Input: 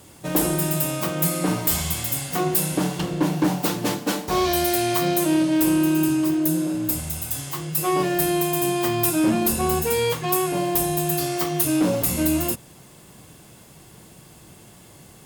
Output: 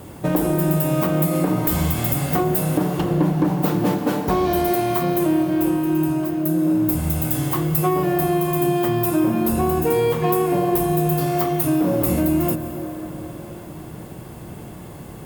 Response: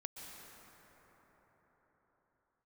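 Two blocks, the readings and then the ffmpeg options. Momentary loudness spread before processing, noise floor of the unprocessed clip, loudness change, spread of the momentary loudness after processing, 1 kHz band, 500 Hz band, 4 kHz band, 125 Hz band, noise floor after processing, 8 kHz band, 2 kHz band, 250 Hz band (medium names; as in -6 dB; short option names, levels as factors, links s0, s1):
5 LU, -48 dBFS, +2.0 dB, 16 LU, +2.5 dB, +3.5 dB, -6.0 dB, +6.0 dB, -37 dBFS, -7.0 dB, -1.5 dB, +3.0 dB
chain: -filter_complex "[0:a]equalizer=f=6300:t=o:w=2.9:g=-14,acompressor=threshold=0.0355:ratio=6,asplit=2[s0][s1];[1:a]atrim=start_sample=2205[s2];[s1][s2]afir=irnorm=-1:irlink=0,volume=1.19[s3];[s0][s3]amix=inputs=2:normalize=0,volume=2.37"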